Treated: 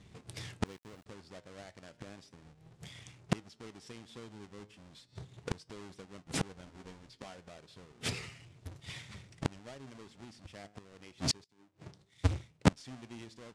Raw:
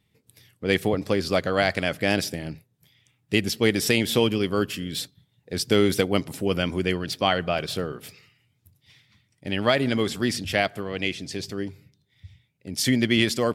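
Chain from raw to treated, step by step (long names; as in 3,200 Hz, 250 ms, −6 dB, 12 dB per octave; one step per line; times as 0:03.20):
each half-wave held at its own peak
low-pass filter 8,800 Hz 24 dB per octave
parametric band 62 Hz +6 dB 0.48 octaves
downward compressor 1.5 to 1, threshold −30 dBFS, peak gain reduction 7 dB
flanger 0.33 Hz, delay 5 ms, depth 5 ms, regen +86%
0:00.66–0:01.06: centre clipping without the shift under −36 dBFS
gate with flip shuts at −29 dBFS, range −33 dB
0:06.65–0:07.37: double-tracking delay 15 ms −6.5 dB
0:11.44–0:12.73: multiband upward and downward expander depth 100%
level +11 dB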